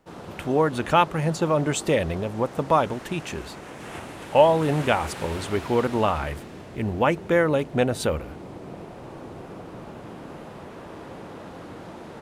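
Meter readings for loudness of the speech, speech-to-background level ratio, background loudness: -23.5 LUFS, 15.5 dB, -39.0 LUFS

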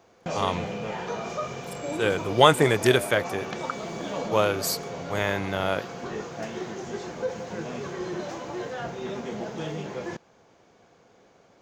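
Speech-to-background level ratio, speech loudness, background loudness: 9.5 dB, -24.5 LUFS, -34.0 LUFS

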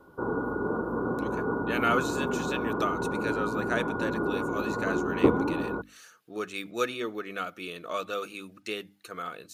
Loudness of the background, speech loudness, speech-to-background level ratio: -30.0 LUFS, -34.0 LUFS, -4.0 dB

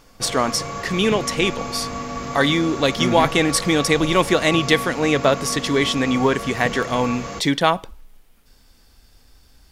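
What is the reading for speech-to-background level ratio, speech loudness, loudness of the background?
9.5 dB, -20.0 LUFS, -29.5 LUFS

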